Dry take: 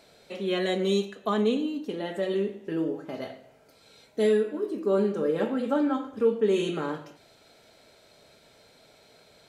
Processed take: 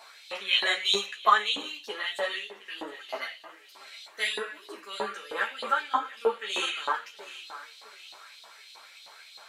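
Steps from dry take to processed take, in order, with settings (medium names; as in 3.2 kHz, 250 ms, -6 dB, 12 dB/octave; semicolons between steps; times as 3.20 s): hum notches 50/100/150 Hz; thinning echo 714 ms, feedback 33%, high-pass 150 Hz, level -16 dB; mains buzz 50 Hz, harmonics 23, -61 dBFS -3 dB/octave; LFO high-pass saw up 3.2 Hz 860–4000 Hz; three-phase chorus; trim +9 dB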